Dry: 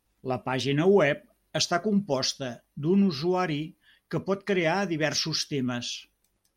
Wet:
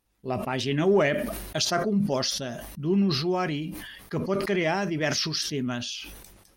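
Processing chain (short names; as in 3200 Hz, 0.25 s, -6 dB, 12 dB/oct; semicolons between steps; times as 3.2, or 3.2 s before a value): in parallel at -11 dB: overloaded stage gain 16 dB; on the sum: sustainer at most 42 dB/s; gain -3 dB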